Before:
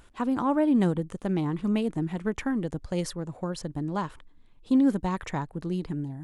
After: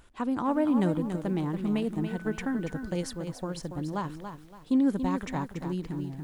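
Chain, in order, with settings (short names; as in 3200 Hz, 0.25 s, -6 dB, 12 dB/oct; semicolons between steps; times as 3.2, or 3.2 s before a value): 2.06–2.9 whine 1500 Hz -44 dBFS; lo-fi delay 0.283 s, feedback 35%, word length 9-bit, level -8 dB; gain -2.5 dB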